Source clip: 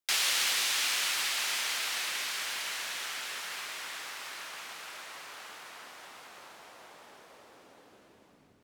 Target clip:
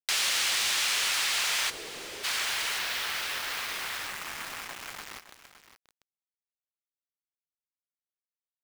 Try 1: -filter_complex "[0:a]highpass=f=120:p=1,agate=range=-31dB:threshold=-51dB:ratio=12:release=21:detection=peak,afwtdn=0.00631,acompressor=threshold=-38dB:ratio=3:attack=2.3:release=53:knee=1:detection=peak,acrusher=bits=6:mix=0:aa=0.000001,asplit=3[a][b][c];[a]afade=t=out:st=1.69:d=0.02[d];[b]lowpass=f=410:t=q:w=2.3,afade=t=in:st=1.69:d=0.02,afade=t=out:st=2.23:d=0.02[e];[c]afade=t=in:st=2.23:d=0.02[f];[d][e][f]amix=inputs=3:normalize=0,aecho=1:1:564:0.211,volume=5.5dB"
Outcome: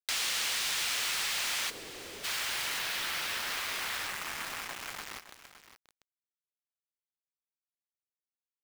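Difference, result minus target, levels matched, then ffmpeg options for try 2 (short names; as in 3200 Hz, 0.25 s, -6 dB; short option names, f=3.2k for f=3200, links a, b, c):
compressor: peak gain reduction +5 dB
-filter_complex "[0:a]highpass=f=120:p=1,agate=range=-31dB:threshold=-51dB:ratio=12:release=21:detection=peak,afwtdn=0.00631,acompressor=threshold=-30.5dB:ratio=3:attack=2.3:release=53:knee=1:detection=peak,acrusher=bits=6:mix=0:aa=0.000001,asplit=3[a][b][c];[a]afade=t=out:st=1.69:d=0.02[d];[b]lowpass=f=410:t=q:w=2.3,afade=t=in:st=1.69:d=0.02,afade=t=out:st=2.23:d=0.02[e];[c]afade=t=in:st=2.23:d=0.02[f];[d][e][f]amix=inputs=3:normalize=0,aecho=1:1:564:0.211,volume=5.5dB"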